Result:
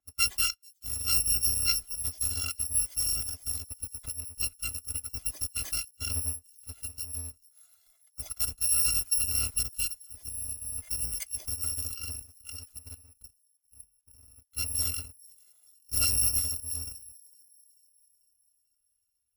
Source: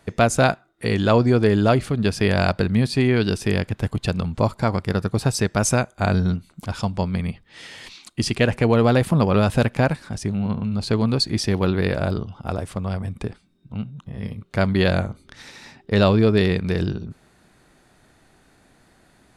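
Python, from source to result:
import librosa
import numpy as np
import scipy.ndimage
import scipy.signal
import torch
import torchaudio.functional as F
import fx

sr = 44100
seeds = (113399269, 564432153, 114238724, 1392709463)

y = fx.bit_reversed(x, sr, seeds[0], block=256)
y = fx.echo_wet_highpass(y, sr, ms=441, feedback_pct=64, hz=5100.0, wet_db=-15.5)
y = fx.cheby_harmonics(y, sr, harmonics=(3,), levels_db=(-17,), full_scale_db=-3.5)
y = fx.level_steps(y, sr, step_db=10, at=(12.78, 14.32), fade=0.02)
y = fx.spectral_expand(y, sr, expansion=1.5)
y = F.gain(torch.from_numpy(y), -7.5).numpy()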